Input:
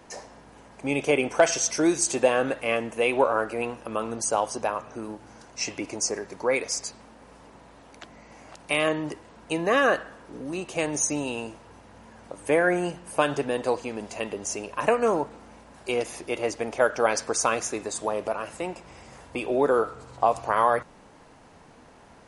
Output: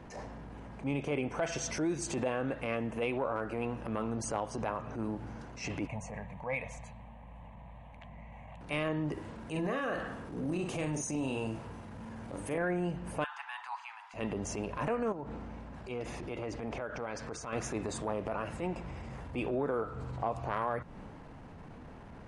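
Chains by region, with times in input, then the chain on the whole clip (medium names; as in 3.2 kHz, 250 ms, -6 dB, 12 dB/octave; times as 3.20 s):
5.87–8.61 s: low-pass 3.4 kHz 6 dB/octave + peaking EQ 320 Hz -14 dB 0.47 oct + static phaser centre 1.4 kHz, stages 6
9.13–12.58 s: treble shelf 7 kHz +12 dB + compression 3:1, threshold -27 dBFS + doubling 45 ms -5.5 dB
13.24–14.14 s: steep high-pass 840 Hz 72 dB/octave + treble shelf 3.5 kHz -11 dB
15.12–17.53 s: low-pass 8.6 kHz + compression 10:1, threshold -32 dBFS
whole clip: tone controls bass +11 dB, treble -12 dB; transient shaper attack -10 dB, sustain +2 dB; compression 4:1, threshold -30 dBFS; trim -1 dB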